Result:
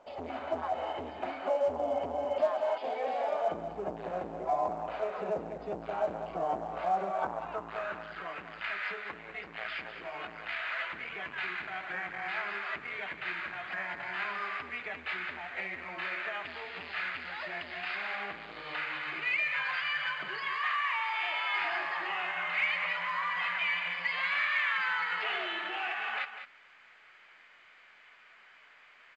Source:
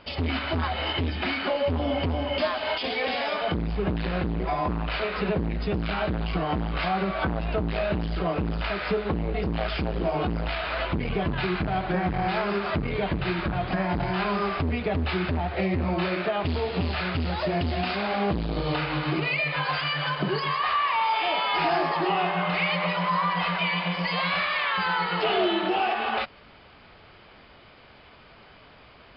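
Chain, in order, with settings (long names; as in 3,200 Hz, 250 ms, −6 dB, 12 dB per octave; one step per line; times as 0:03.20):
band-pass filter sweep 680 Hz → 1,900 Hz, 0:06.99–0:08.38
single-tap delay 199 ms −10.5 dB
mu-law 128 kbit/s 16,000 Hz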